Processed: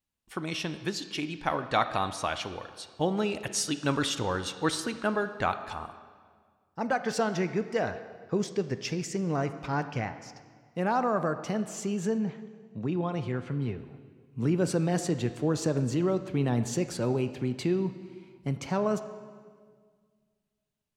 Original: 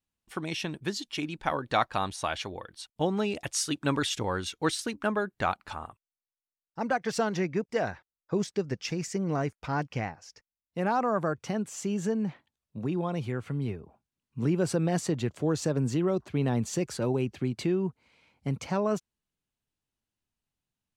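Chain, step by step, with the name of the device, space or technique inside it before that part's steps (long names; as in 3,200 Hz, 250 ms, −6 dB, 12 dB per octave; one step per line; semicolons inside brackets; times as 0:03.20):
filtered reverb send (on a send: high-pass filter 190 Hz 6 dB per octave + low-pass filter 5,800 Hz 12 dB per octave + convolution reverb RT60 1.8 s, pre-delay 15 ms, DRR 10 dB)
0:12.18–0:13.79: on the sum: low-pass filter 6,500 Hz 12 dB per octave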